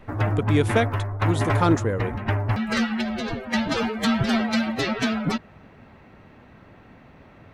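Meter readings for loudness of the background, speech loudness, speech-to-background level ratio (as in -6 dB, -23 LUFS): -25.0 LUFS, -25.5 LUFS, -0.5 dB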